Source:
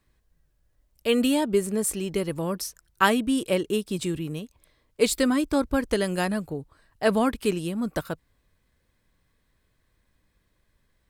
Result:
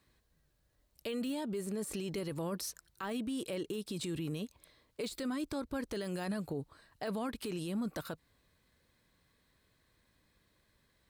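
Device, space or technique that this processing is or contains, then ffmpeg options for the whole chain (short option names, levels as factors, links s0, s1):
broadcast voice chain: -af "highpass=f=100:p=1,deesser=0.65,acompressor=threshold=0.0355:ratio=5,equalizer=f=4100:t=o:w=0.34:g=5,alimiter=level_in=1.88:limit=0.0631:level=0:latency=1:release=12,volume=0.531"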